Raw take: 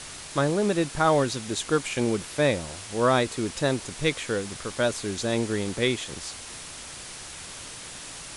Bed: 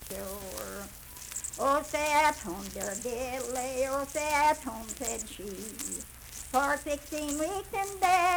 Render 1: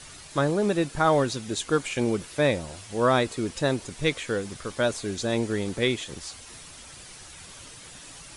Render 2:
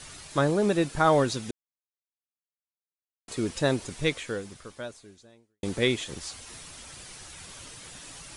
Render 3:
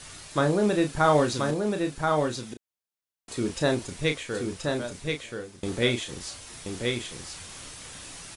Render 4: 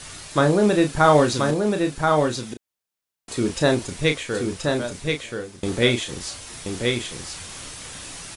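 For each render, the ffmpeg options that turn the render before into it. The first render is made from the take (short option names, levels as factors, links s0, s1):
-af "afftdn=nr=8:nf=-41"
-filter_complex "[0:a]asplit=4[s0][s1][s2][s3];[s0]atrim=end=1.51,asetpts=PTS-STARTPTS,afade=t=out:st=1.506:d=0.004:c=hsin[s4];[s1]atrim=start=1.51:end=3.28,asetpts=PTS-STARTPTS,volume=0[s5];[s2]atrim=start=3.28:end=5.63,asetpts=PTS-STARTPTS,afade=t=in:d=0.004:c=hsin,afade=t=out:st=0.65:d=1.7:c=qua[s6];[s3]atrim=start=5.63,asetpts=PTS-STARTPTS,afade=t=in:d=0.004:c=hsin[s7];[s4][s5][s6][s7]concat=n=4:v=0:a=1"
-filter_complex "[0:a]asplit=2[s0][s1];[s1]adelay=33,volume=0.447[s2];[s0][s2]amix=inputs=2:normalize=0,asplit=2[s3][s4];[s4]aecho=0:1:1029:0.631[s5];[s3][s5]amix=inputs=2:normalize=0"
-af "volume=1.88"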